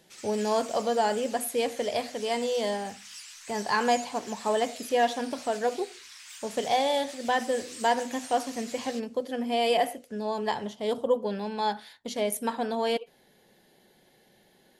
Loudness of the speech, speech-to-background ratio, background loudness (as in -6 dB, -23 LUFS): -29.0 LUFS, 13.5 dB, -42.5 LUFS